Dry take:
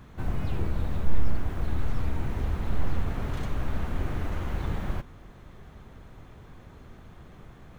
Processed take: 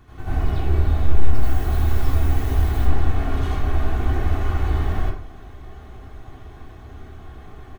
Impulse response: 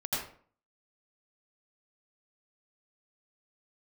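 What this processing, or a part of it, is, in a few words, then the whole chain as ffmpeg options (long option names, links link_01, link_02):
microphone above a desk: -filter_complex "[0:a]asettb=1/sr,asplit=3[link_01][link_02][link_03];[link_01]atrim=end=1.344[link_04];[link_02]atrim=start=1.34:end=2.77,asetpts=PTS-STARTPTS,afade=type=in:duration=0.004:curve=qsin,afade=type=out:start_time=1.426:duration=0.004:curve=qsin,aemphasis=mode=production:type=50kf[link_05];[link_03]atrim=start=2.766[link_06];[link_04][link_05]acrossfade=duration=0.004:curve1=hsin:curve2=qsin[link_07];[link_07][link_06]acrossfade=duration=0.004:curve1=qsin:curve2=hsin,aecho=1:1:2.7:0.6[link_08];[1:a]atrim=start_sample=2205[link_09];[link_08][link_09]afir=irnorm=-1:irlink=0"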